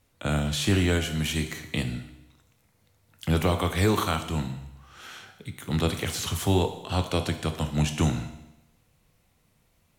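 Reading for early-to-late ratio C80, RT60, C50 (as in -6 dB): 12.0 dB, 0.90 s, 9.5 dB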